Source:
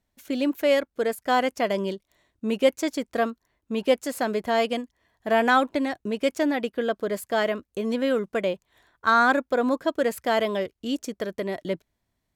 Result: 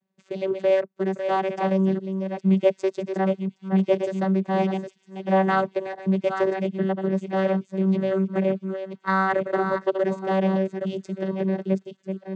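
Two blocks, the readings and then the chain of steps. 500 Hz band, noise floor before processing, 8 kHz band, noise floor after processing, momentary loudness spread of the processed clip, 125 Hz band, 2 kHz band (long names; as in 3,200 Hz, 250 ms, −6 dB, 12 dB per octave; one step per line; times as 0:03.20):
+1.0 dB, −79 dBFS, below −10 dB, −66 dBFS, 8 LU, can't be measured, −4.5 dB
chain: delay that plays each chunk backwards 496 ms, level −7 dB
channel vocoder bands 16, saw 191 Hz
delay with a high-pass on its return 993 ms, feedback 65%, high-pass 4,200 Hz, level −16.5 dB
level +1.5 dB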